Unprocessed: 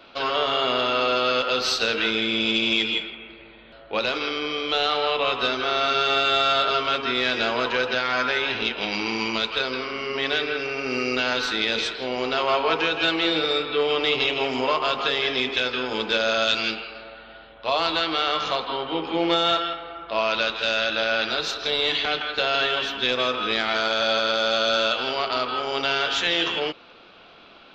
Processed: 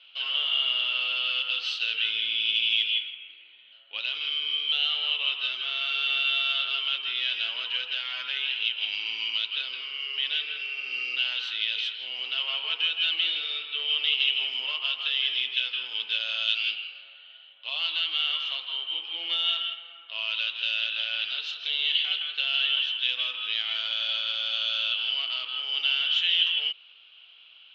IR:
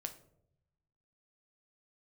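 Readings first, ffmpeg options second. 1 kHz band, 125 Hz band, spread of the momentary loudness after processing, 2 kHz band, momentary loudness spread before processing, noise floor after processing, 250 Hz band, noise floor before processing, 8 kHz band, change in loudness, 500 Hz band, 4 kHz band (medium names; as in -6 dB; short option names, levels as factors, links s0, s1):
-20.0 dB, under -35 dB, 7 LU, -5.0 dB, 6 LU, -53 dBFS, under -30 dB, -48 dBFS, under -15 dB, -3.0 dB, -28.0 dB, +0.5 dB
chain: -af "acontrast=52,bandpass=f=3000:t=q:w=11:csg=0,volume=1.26"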